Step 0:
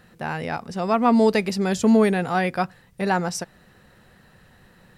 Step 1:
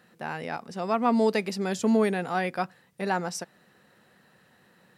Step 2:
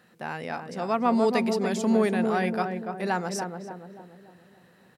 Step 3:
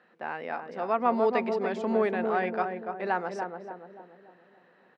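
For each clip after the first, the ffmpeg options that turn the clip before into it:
-af "highpass=180,volume=0.562"
-filter_complex "[0:a]asplit=2[s0][s1];[s1]adelay=289,lowpass=f=980:p=1,volume=0.631,asplit=2[s2][s3];[s3]adelay=289,lowpass=f=980:p=1,volume=0.52,asplit=2[s4][s5];[s5]adelay=289,lowpass=f=980:p=1,volume=0.52,asplit=2[s6][s7];[s7]adelay=289,lowpass=f=980:p=1,volume=0.52,asplit=2[s8][s9];[s9]adelay=289,lowpass=f=980:p=1,volume=0.52,asplit=2[s10][s11];[s11]adelay=289,lowpass=f=980:p=1,volume=0.52,asplit=2[s12][s13];[s13]adelay=289,lowpass=f=980:p=1,volume=0.52[s14];[s0][s2][s4][s6][s8][s10][s12][s14]amix=inputs=8:normalize=0"
-af "highpass=330,lowpass=2300"

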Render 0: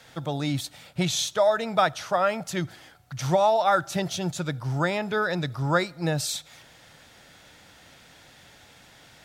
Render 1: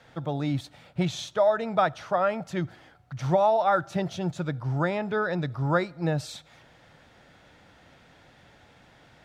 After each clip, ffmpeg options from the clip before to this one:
-af "lowpass=f=1500:p=1"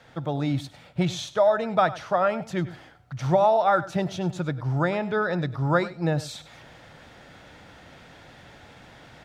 -af "areverse,acompressor=mode=upward:threshold=0.00708:ratio=2.5,areverse,aecho=1:1:99:0.15,volume=1.26"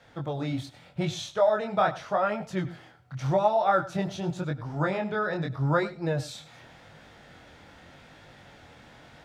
-af "flanger=delay=19:depth=6.4:speed=0.85"

